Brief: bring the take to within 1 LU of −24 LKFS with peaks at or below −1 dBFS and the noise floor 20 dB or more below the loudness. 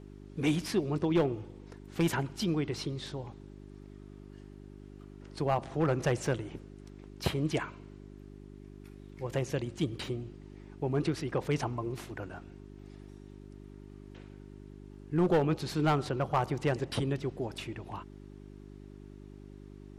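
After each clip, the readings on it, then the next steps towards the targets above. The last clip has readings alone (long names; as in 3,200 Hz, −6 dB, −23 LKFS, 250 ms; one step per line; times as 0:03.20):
share of clipped samples 0.4%; peaks flattened at −20.0 dBFS; mains hum 50 Hz; hum harmonics up to 400 Hz; level of the hum −48 dBFS; integrated loudness −32.5 LKFS; sample peak −20.0 dBFS; target loudness −24.0 LKFS
→ clipped peaks rebuilt −20 dBFS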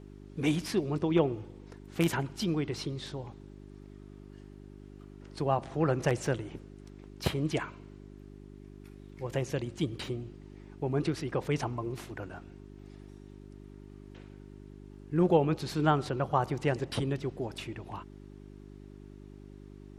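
share of clipped samples 0.0%; mains hum 50 Hz; hum harmonics up to 400 Hz; level of the hum −48 dBFS
→ hum removal 50 Hz, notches 8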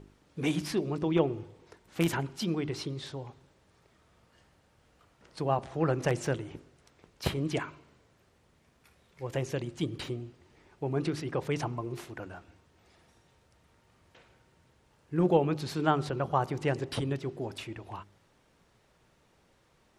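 mains hum none found; integrated loudness −32.5 LKFS; sample peak −11.0 dBFS; target loudness −24.0 LKFS
→ level +8.5 dB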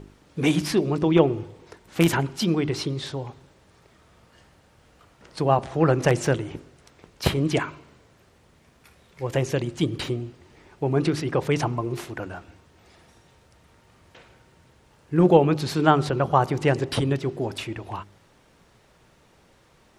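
integrated loudness −24.0 LKFS; sample peak −2.5 dBFS; background noise floor −58 dBFS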